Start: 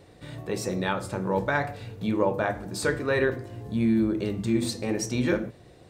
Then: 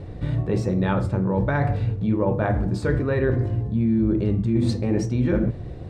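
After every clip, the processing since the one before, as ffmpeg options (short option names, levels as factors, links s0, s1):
-af "aemphasis=mode=reproduction:type=riaa,areverse,acompressor=threshold=0.0501:ratio=6,areverse,volume=2.37"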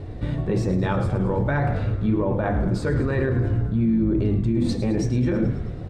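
-filter_complex "[0:a]flanger=delay=2.8:depth=5.8:regen=-61:speed=0.46:shape=sinusoidal,asplit=2[s0][s1];[s1]asplit=8[s2][s3][s4][s5][s6][s7][s8][s9];[s2]adelay=108,afreqshift=-59,volume=0.251[s10];[s3]adelay=216,afreqshift=-118,volume=0.16[s11];[s4]adelay=324,afreqshift=-177,volume=0.102[s12];[s5]adelay=432,afreqshift=-236,volume=0.0661[s13];[s6]adelay=540,afreqshift=-295,volume=0.0422[s14];[s7]adelay=648,afreqshift=-354,volume=0.0269[s15];[s8]adelay=756,afreqshift=-413,volume=0.0172[s16];[s9]adelay=864,afreqshift=-472,volume=0.0111[s17];[s10][s11][s12][s13][s14][s15][s16][s17]amix=inputs=8:normalize=0[s18];[s0][s18]amix=inputs=2:normalize=0,alimiter=limit=0.106:level=0:latency=1:release=25,volume=1.88"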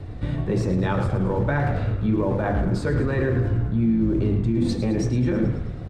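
-filter_complex "[0:a]acrossover=split=330|620|2900[s0][s1][s2][s3];[s1]aeval=exprs='sgn(val(0))*max(abs(val(0))-0.00299,0)':c=same[s4];[s0][s4][s2][s3]amix=inputs=4:normalize=0,asplit=2[s5][s6];[s6]adelay=110,highpass=300,lowpass=3400,asoftclip=type=hard:threshold=0.0891,volume=0.355[s7];[s5][s7]amix=inputs=2:normalize=0"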